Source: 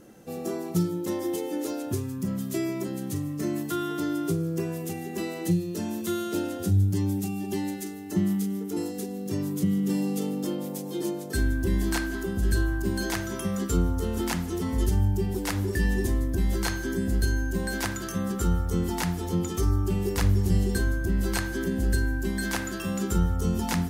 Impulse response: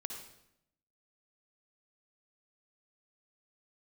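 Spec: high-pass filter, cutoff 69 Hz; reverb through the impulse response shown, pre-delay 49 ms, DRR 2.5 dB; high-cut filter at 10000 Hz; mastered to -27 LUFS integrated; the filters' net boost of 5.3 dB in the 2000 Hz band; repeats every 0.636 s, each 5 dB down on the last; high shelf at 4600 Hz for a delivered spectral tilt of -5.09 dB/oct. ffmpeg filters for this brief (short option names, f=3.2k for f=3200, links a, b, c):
-filter_complex "[0:a]highpass=69,lowpass=10k,equalizer=f=2k:t=o:g=6.5,highshelf=f=4.6k:g=4.5,aecho=1:1:636|1272|1908|2544|3180|3816|4452:0.562|0.315|0.176|0.0988|0.0553|0.031|0.0173,asplit=2[a][b];[1:a]atrim=start_sample=2205,adelay=49[c];[b][c]afir=irnorm=-1:irlink=0,volume=-1.5dB[d];[a][d]amix=inputs=2:normalize=0,volume=-2dB"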